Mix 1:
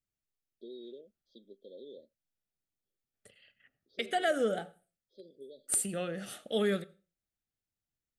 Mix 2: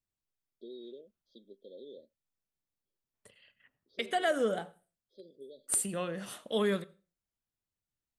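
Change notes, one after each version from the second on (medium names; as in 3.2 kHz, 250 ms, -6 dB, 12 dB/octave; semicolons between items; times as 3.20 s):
master: remove Butterworth band-stop 1 kHz, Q 3.1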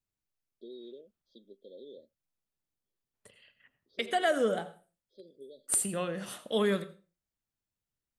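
second voice: send +9.0 dB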